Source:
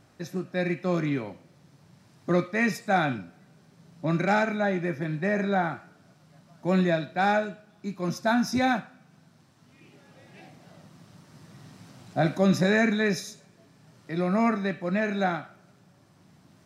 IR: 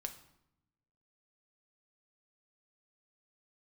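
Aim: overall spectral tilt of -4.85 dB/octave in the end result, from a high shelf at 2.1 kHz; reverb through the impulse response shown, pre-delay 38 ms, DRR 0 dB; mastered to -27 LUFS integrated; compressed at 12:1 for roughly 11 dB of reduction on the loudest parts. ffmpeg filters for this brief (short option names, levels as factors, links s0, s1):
-filter_complex "[0:a]highshelf=f=2100:g=7,acompressor=threshold=0.0398:ratio=12,asplit=2[s0][s1];[1:a]atrim=start_sample=2205,adelay=38[s2];[s1][s2]afir=irnorm=-1:irlink=0,volume=1.26[s3];[s0][s3]amix=inputs=2:normalize=0,volume=1.58"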